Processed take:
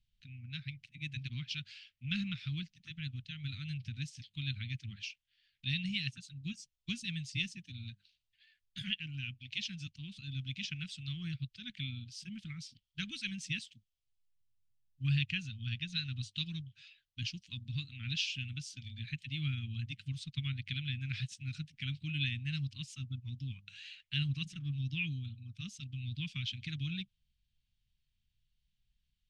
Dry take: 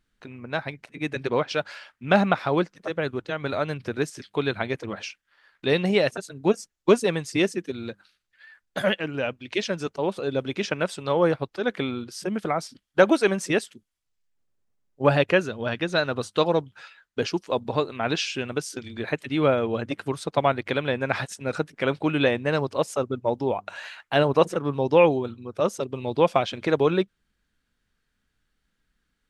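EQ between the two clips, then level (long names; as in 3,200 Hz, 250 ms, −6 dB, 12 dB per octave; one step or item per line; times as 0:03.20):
elliptic band-stop filter 130–2,800 Hz, stop band 80 dB
high-frequency loss of the air 110 metres
parametric band 250 Hz +8 dB 0.79 octaves
−2.5 dB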